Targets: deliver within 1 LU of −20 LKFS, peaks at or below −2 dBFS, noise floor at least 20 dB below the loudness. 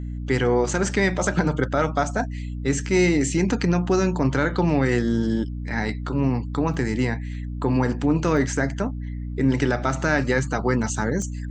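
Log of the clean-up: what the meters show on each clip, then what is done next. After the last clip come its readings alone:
number of dropouts 3; longest dropout 1.1 ms; mains hum 60 Hz; hum harmonics up to 300 Hz; level of the hum −28 dBFS; integrated loudness −23.0 LKFS; sample peak −6.5 dBFS; target loudness −20.0 LKFS
→ repair the gap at 0:06.74/0:08.37/0:11.22, 1.1 ms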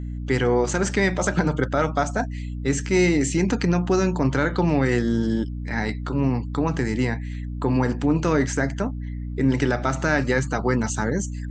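number of dropouts 0; mains hum 60 Hz; hum harmonics up to 300 Hz; level of the hum −28 dBFS
→ mains-hum notches 60/120/180/240/300 Hz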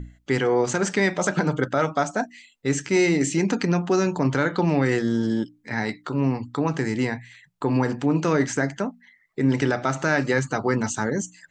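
mains hum none found; integrated loudness −23.5 LKFS; sample peak −7.0 dBFS; target loudness −20.0 LKFS
→ level +3.5 dB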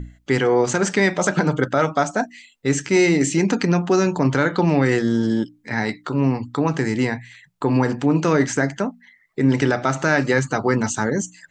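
integrated loudness −20.0 LKFS; sample peak −3.5 dBFS; background noise floor −59 dBFS

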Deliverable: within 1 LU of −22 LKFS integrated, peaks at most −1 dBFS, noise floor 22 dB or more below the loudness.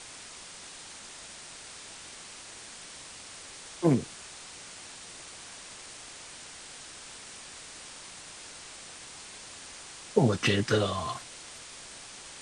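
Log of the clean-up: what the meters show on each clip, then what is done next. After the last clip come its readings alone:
background noise floor −47 dBFS; target noise floor −57 dBFS; integrated loudness −35.0 LKFS; sample peak −9.0 dBFS; target loudness −22.0 LKFS
→ broadband denoise 10 dB, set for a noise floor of −47 dBFS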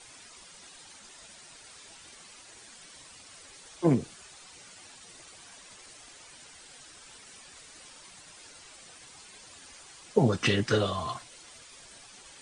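background noise floor −52 dBFS; integrated loudness −28.0 LKFS; sample peak −9.0 dBFS; target loudness −22.0 LKFS
→ level +6 dB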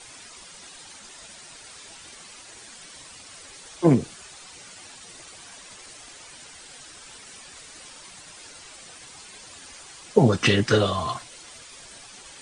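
integrated loudness −22.0 LKFS; sample peak −3.0 dBFS; background noise floor −46 dBFS

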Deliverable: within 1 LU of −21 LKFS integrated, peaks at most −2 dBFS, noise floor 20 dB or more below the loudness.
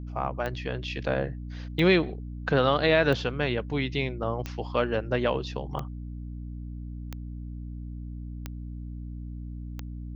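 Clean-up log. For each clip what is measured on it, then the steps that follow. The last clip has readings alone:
number of clicks 8; mains hum 60 Hz; hum harmonics up to 300 Hz; level of the hum −35 dBFS; integrated loudness −27.5 LKFS; sample peak −8.0 dBFS; target loudness −21.0 LKFS
→ click removal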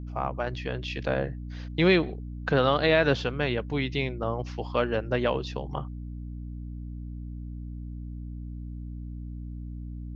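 number of clicks 0; mains hum 60 Hz; hum harmonics up to 300 Hz; level of the hum −35 dBFS
→ mains-hum notches 60/120/180/240/300 Hz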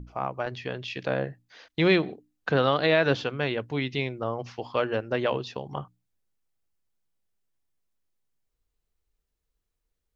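mains hum none found; integrated loudness −27.5 LKFS; sample peak −7.5 dBFS; target loudness −21.0 LKFS
→ level +6.5 dB
brickwall limiter −2 dBFS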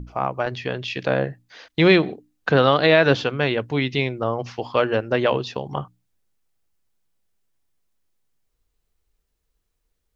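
integrated loudness −21.0 LKFS; sample peak −2.0 dBFS; background noise floor −75 dBFS

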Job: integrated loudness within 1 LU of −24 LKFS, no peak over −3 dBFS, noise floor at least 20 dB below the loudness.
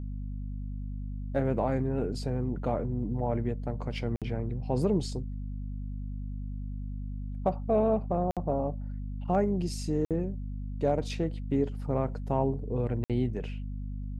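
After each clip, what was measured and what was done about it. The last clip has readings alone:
number of dropouts 4; longest dropout 57 ms; mains hum 50 Hz; hum harmonics up to 250 Hz; level of the hum −33 dBFS; integrated loudness −32.0 LKFS; sample peak −14.5 dBFS; target loudness −24.0 LKFS
→ repair the gap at 0:04.16/0:08.31/0:10.05/0:13.04, 57 ms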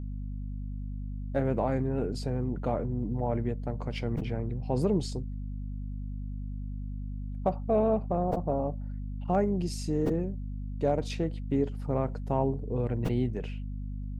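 number of dropouts 0; mains hum 50 Hz; hum harmonics up to 250 Hz; level of the hum −33 dBFS
→ hum removal 50 Hz, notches 5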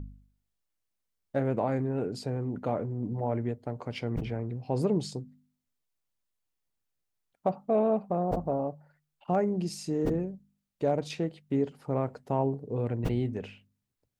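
mains hum none found; integrated loudness −31.5 LKFS; sample peak −15.5 dBFS; target loudness −24.0 LKFS
→ level +7.5 dB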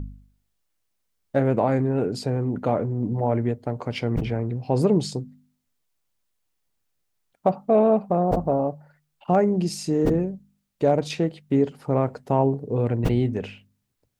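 integrated loudness −24.0 LKFS; sample peak −8.0 dBFS; background noise floor −75 dBFS

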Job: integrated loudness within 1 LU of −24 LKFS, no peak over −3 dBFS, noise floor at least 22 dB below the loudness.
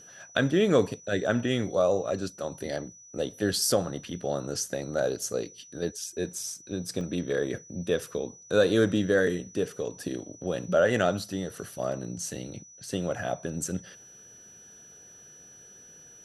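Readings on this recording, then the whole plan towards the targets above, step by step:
number of dropouts 1; longest dropout 1.6 ms; interfering tone 5,900 Hz; level of the tone −49 dBFS; integrated loudness −29.0 LKFS; sample peak −9.0 dBFS; target loudness −24.0 LKFS
→ repair the gap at 0:07.01, 1.6 ms
notch filter 5,900 Hz, Q 30
level +5 dB

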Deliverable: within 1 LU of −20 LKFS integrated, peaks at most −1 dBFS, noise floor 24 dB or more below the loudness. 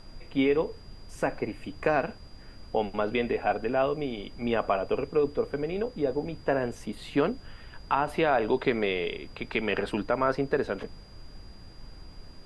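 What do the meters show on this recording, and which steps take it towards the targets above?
interfering tone 4,800 Hz; level of the tone −56 dBFS; background noise floor −48 dBFS; target noise floor −53 dBFS; integrated loudness −29.0 LKFS; sample peak −10.5 dBFS; target loudness −20.0 LKFS
→ notch filter 4,800 Hz, Q 30
noise reduction from a noise print 6 dB
level +9 dB

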